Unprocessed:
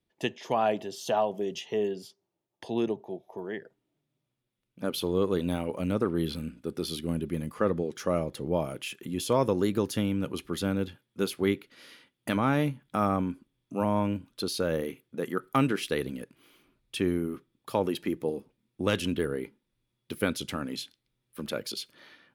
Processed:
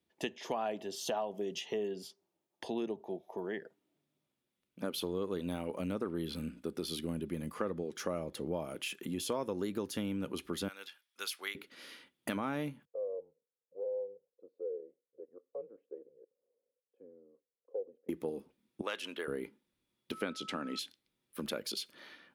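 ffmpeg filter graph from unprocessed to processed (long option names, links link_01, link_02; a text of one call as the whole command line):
ffmpeg -i in.wav -filter_complex "[0:a]asettb=1/sr,asplit=3[link_01][link_02][link_03];[link_01]atrim=end=10.684[link_04];[link_02]atrim=start=10.68:end=11.55,asetpts=PTS-STARTPTS,afade=type=in:duration=0.004:curve=qsin,afade=type=out:start_time=0.866:duration=0.004:curve=qsin,highpass=1400,equalizer=frequency=5400:width=5.1:gain=5[link_05];[link_03]atrim=start=11.546[link_06];[link_04][link_05]acrossfade=duration=0.004:curve1=hsin:curve2=qsin[link_07];[link_07][link_06]acrossfade=duration=0.004:curve1=qsin:curve2=hsin,asettb=1/sr,asplit=3[link_08][link_09][link_10];[link_08]atrim=end=12.854[link_11];[link_09]atrim=start=12.85:end=18.09,asetpts=PTS-STARTPTS,afade=type=in:duration=0.004:curve=qsin,afade=type=out:start_time=5.236:duration=0.004:curve=qsin,asuperpass=centerf=610:order=4:qfactor=6.6,afreqshift=-110[link_12];[link_10]atrim=start=18.086[link_13];[link_11][link_12]acrossfade=duration=0.004:curve1=hsin:curve2=qsin[link_14];[link_14][link_13]acrossfade=duration=0.004:curve1=qsin:curve2=hsin,asettb=1/sr,asplit=3[link_15][link_16][link_17];[link_15]atrim=end=18.814[link_18];[link_16]atrim=start=18.81:end=19.28,asetpts=PTS-STARTPTS,afade=type=in:duration=0.004:curve=qsin,afade=type=out:start_time=0.466:duration=0.004:curve=qsin,highpass=690,highshelf=frequency=4800:gain=-9[link_19];[link_17]atrim=start=19.276[link_20];[link_18][link_19]acrossfade=duration=0.004:curve1=hsin:curve2=qsin[link_21];[link_21][link_20]acrossfade=duration=0.004:curve1=qsin:curve2=hsin,asettb=1/sr,asplit=3[link_22][link_23][link_24];[link_22]atrim=end=20.124[link_25];[link_23]atrim=start=20.12:end=20.79,asetpts=PTS-STARTPTS,afade=type=in:duration=0.004:curve=qsin,afade=type=out:start_time=0.666:duration=0.004:curve=qsin,highpass=170,lowpass=6400,aeval=exprs='val(0)+0.00562*sin(2*PI*1300*n/s)':channel_layout=same[link_26];[link_24]atrim=start=20.786[link_27];[link_25][link_26]acrossfade=duration=0.004:curve1=hsin:curve2=qsin[link_28];[link_28][link_27]acrossfade=duration=0.004:curve1=qsin:curve2=hsin,highpass=73,equalizer=frequency=120:width=3.8:gain=-13.5,acompressor=threshold=-35dB:ratio=3" out.wav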